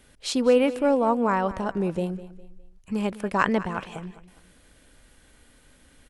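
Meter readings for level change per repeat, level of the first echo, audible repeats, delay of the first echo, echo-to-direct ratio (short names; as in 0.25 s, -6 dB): -9.0 dB, -16.0 dB, 3, 0.204 s, -15.5 dB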